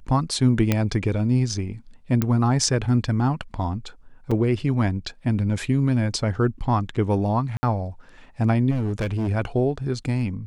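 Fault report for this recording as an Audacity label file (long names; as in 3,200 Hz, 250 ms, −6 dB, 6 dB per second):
0.720000	0.720000	click −6 dBFS
2.220000	2.220000	click −9 dBFS
4.310000	4.320000	drop-out 5.1 ms
7.570000	7.630000	drop-out 60 ms
8.700000	9.290000	clipping −21 dBFS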